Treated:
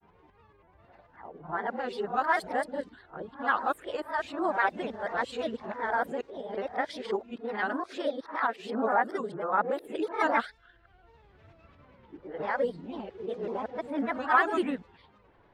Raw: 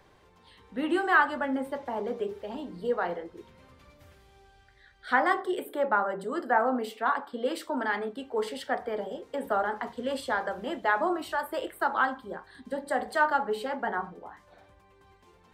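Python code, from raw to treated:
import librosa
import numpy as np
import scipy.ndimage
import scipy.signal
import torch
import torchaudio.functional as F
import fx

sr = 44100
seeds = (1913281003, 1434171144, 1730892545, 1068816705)

y = np.flip(x).copy()
y = fx.env_lowpass(y, sr, base_hz=2300.0, full_db=-22.5)
y = fx.granulator(y, sr, seeds[0], grain_ms=100.0, per_s=20.0, spray_ms=12.0, spread_st=3)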